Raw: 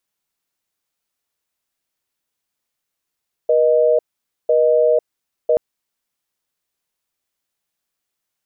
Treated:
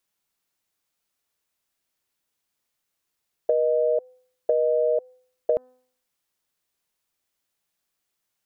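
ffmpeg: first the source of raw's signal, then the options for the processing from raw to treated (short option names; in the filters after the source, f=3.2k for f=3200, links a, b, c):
-f lavfi -i "aevalsrc='0.2*(sin(2*PI*480*t)+sin(2*PI*620*t))*clip(min(mod(t,1),0.5-mod(t,1))/0.005,0,1)':d=2.08:s=44100"
-af "bandreject=f=253.2:t=h:w=4,bandreject=f=506.4:t=h:w=4,bandreject=f=759.6:t=h:w=4,bandreject=f=1.0128k:t=h:w=4,bandreject=f=1.266k:t=h:w=4,bandreject=f=1.5192k:t=h:w=4,bandreject=f=1.7724k:t=h:w=4,acompressor=threshold=-19dB:ratio=6"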